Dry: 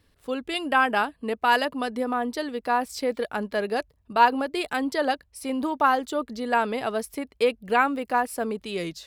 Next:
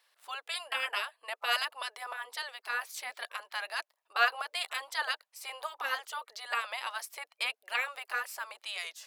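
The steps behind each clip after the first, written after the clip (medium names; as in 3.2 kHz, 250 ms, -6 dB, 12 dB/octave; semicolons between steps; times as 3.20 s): spectral gate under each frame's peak -10 dB weak; high-pass 680 Hz 24 dB/octave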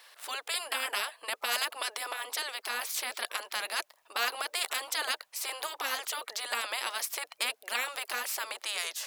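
spectrum-flattening compressor 2:1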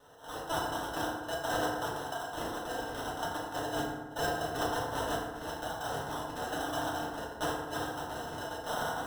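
two resonant band-passes 1.6 kHz, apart 2.5 oct; sample-rate reducer 2.3 kHz, jitter 0%; FDN reverb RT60 1.3 s, low-frequency decay 1.2×, high-frequency decay 0.5×, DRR -6 dB; trim +2 dB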